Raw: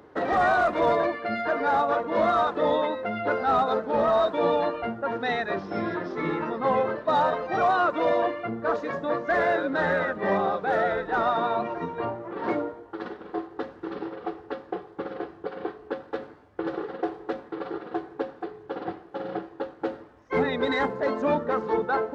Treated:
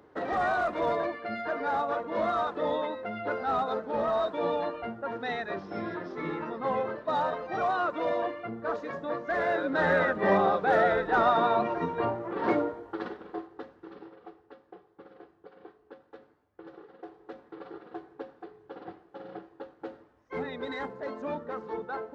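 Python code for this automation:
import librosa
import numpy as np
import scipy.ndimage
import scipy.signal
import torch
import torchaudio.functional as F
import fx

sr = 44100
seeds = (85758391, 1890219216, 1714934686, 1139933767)

y = fx.gain(x, sr, db=fx.line((9.34, -6.0), (10.0, 1.0), (12.91, 1.0), (13.64, -10.0), (14.51, -17.5), (16.94, -17.5), (17.53, -10.5)))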